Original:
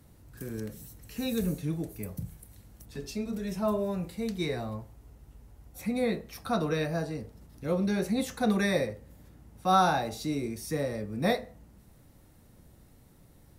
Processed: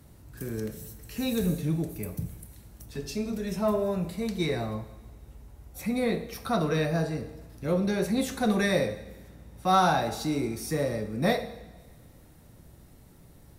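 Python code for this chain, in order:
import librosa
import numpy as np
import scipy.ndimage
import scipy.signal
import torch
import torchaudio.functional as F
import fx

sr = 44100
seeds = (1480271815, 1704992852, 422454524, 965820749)

p1 = 10.0 ** (-27.5 / 20.0) * np.tanh(x / 10.0 ** (-27.5 / 20.0))
p2 = x + F.gain(torch.from_numpy(p1), -7.0).numpy()
y = fx.rev_double_slope(p2, sr, seeds[0], early_s=0.9, late_s=2.7, knee_db=-18, drr_db=9.0)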